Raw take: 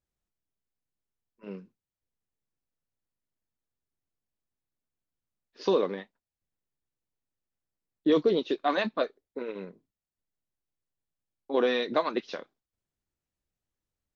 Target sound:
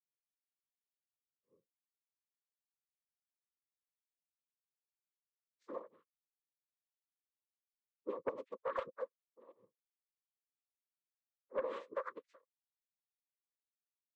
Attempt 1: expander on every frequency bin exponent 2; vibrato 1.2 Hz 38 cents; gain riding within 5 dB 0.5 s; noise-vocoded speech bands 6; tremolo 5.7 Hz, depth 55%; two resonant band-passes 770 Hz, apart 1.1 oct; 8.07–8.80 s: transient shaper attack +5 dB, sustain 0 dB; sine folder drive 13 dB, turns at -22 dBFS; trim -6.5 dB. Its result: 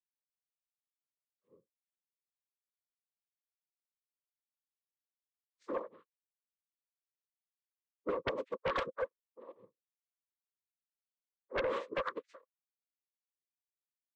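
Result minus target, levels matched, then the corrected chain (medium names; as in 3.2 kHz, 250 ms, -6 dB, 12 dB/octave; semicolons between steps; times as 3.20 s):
sine folder: distortion +14 dB
expander on every frequency bin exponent 2; vibrato 1.2 Hz 38 cents; gain riding within 5 dB 0.5 s; noise-vocoded speech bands 6; tremolo 5.7 Hz, depth 55%; two resonant band-passes 770 Hz, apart 1.1 oct; 8.07–8.80 s: transient shaper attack +5 dB, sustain 0 dB; sine folder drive 4 dB, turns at -22 dBFS; trim -6.5 dB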